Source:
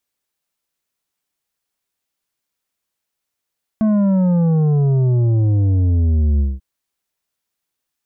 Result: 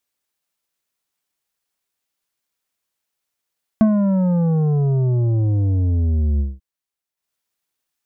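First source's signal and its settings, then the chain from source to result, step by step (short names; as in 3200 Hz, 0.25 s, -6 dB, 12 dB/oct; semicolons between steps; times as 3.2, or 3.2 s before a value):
sub drop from 220 Hz, over 2.79 s, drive 8 dB, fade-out 0.20 s, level -13 dB
low shelf 380 Hz -3 dB; transient shaper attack +7 dB, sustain -8 dB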